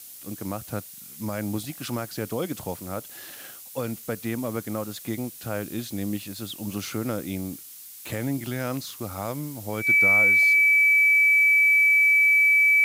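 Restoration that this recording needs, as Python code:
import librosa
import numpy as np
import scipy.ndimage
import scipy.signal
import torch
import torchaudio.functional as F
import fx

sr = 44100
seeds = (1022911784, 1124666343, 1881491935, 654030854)

y = fx.notch(x, sr, hz=2300.0, q=30.0)
y = fx.noise_reduce(y, sr, print_start_s=7.55, print_end_s=8.05, reduce_db=25.0)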